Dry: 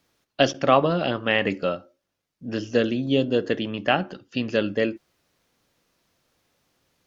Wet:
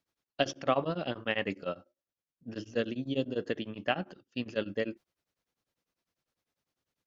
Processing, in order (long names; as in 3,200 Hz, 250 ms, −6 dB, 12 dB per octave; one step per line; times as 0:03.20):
noise gate −40 dBFS, range −7 dB
tremolo along a rectified sine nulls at 10 Hz
level −7.5 dB